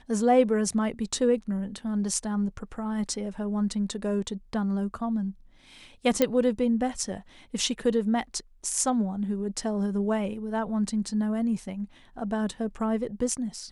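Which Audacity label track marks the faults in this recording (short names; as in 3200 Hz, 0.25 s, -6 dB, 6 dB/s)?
6.220000	6.220000	pop -8 dBFS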